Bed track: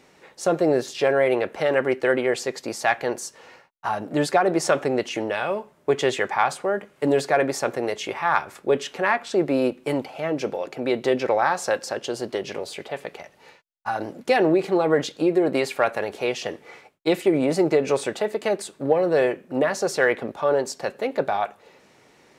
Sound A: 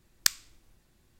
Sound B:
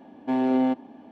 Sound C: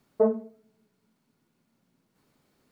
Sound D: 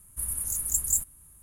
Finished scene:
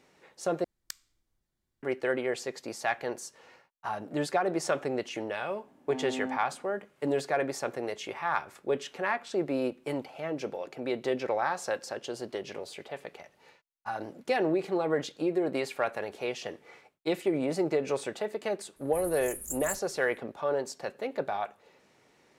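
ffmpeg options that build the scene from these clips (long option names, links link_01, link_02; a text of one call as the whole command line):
ffmpeg -i bed.wav -i cue0.wav -i cue1.wav -i cue2.wav -i cue3.wav -filter_complex "[0:a]volume=-8.5dB[link_01];[1:a]bandreject=frequency=2600:width=11[link_02];[link_01]asplit=2[link_03][link_04];[link_03]atrim=end=0.644[link_05];[link_02]atrim=end=1.19,asetpts=PTS-STARTPTS,volume=-17.5dB[link_06];[link_04]atrim=start=1.826[link_07];[2:a]atrim=end=1.11,asetpts=PTS-STARTPTS,volume=-14dB,afade=type=in:duration=0.004:curve=hsin,afade=type=out:start_time=1.106:duration=0.004:curve=hsin,adelay=5630[link_08];[4:a]atrim=end=1.42,asetpts=PTS-STARTPTS,volume=-11dB,afade=type=in:duration=0.004:curve=hsin,afade=type=out:start_time=1.416:duration=0.004:curve=hsin,adelay=827316S[link_09];[link_05][link_06]acrossfade=duration=0.004:curve1=hsin:curve2=hsin[link_10];[link_10][link_07]acrossfade=duration=0.004:curve1=hsin:curve2=hsin[link_11];[link_11][link_08][link_09]amix=inputs=3:normalize=0" out.wav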